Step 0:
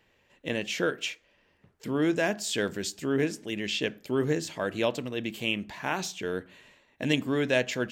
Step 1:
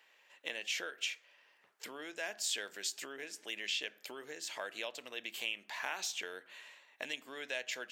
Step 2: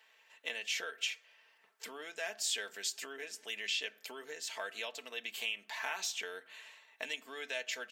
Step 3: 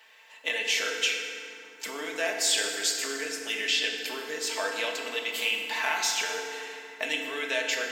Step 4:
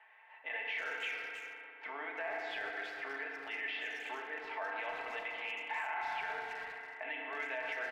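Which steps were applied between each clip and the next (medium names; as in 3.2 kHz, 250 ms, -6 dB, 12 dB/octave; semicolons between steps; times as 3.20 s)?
dynamic bell 1.1 kHz, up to -5 dB, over -43 dBFS, Q 1.4; compression 5:1, threshold -35 dBFS, peak gain reduction 13.5 dB; high-pass 850 Hz 12 dB/octave; trim +2.5 dB
bass shelf 250 Hz -8 dB; comb 4.5 ms, depth 56%
FDN reverb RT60 2.6 s, low-frequency decay 1.45×, high-frequency decay 0.6×, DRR 0.5 dB; trim +8.5 dB
cabinet simulation 450–2200 Hz, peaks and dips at 480 Hz -7 dB, 800 Hz +9 dB, 2 kHz +3 dB; peak limiter -24.5 dBFS, peak gain reduction 11.5 dB; speakerphone echo 320 ms, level -7 dB; trim -5 dB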